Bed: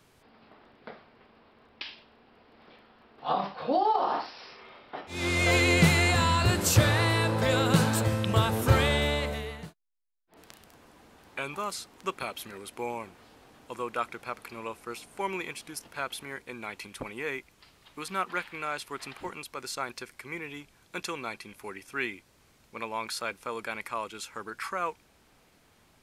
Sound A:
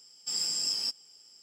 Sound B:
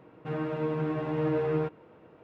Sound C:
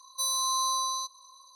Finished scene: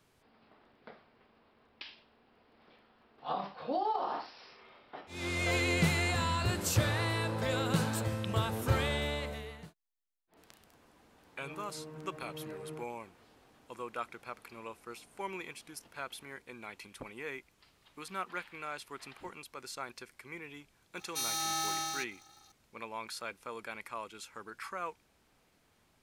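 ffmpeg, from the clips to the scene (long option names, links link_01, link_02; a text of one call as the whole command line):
ffmpeg -i bed.wav -i cue0.wav -i cue1.wav -i cue2.wav -filter_complex "[0:a]volume=-7.5dB[link_01];[3:a]aeval=exprs='val(0)*sgn(sin(2*PI*240*n/s))':channel_layout=same[link_02];[2:a]atrim=end=2.23,asetpts=PTS-STARTPTS,volume=-17dB,afade=type=in:duration=0.004:curve=hsin,afade=type=out:start_time=2.226:duration=0.004:curve=hsin,adelay=11160[link_03];[link_02]atrim=end=1.55,asetpts=PTS-STARTPTS,volume=-6dB,afade=type=in:duration=0.004:curve=hsin,afade=type=out:start_time=1.546:duration=0.004:curve=hsin,adelay=20970[link_04];[link_01][link_03][link_04]amix=inputs=3:normalize=0" out.wav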